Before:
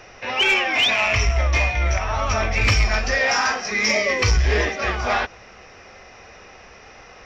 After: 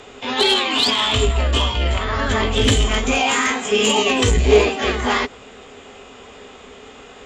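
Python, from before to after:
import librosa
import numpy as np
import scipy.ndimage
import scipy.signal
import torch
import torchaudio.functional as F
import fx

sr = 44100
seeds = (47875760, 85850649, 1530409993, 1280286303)

y = fx.formant_shift(x, sr, semitones=5)
y = fx.cheby_harmonics(y, sr, harmonics=(5,), levels_db=(-34,), full_scale_db=-5.0)
y = fx.small_body(y, sr, hz=(260.0, 410.0), ring_ms=65, db=15)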